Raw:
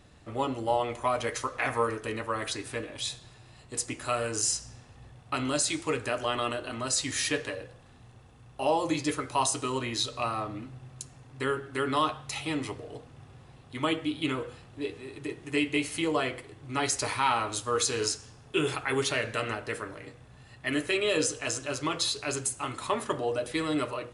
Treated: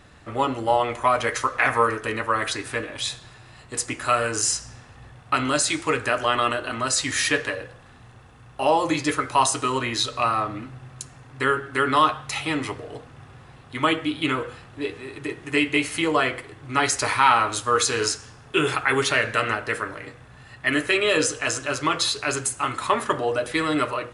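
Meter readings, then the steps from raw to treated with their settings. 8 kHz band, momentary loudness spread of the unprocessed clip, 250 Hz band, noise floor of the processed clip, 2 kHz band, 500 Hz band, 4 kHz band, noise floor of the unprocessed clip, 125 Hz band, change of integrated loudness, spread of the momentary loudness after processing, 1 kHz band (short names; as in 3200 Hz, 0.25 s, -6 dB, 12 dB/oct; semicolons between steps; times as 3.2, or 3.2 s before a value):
+5.0 dB, 12 LU, +5.0 dB, -49 dBFS, +10.0 dB, +5.5 dB, +6.0 dB, -54 dBFS, +4.5 dB, +7.0 dB, 12 LU, +9.0 dB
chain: bell 1500 Hz +7 dB 1.4 oct; gain +4.5 dB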